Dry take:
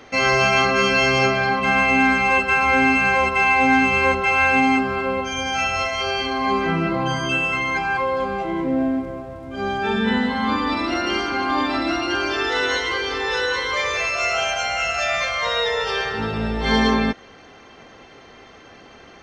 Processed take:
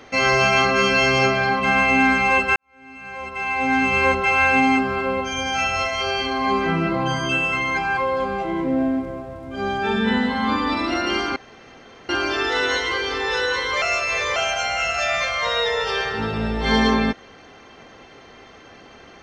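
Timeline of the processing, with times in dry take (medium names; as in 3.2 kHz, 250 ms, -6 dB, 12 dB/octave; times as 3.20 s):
2.56–4.00 s: fade in quadratic
11.36–12.09 s: room tone
13.82–14.36 s: reverse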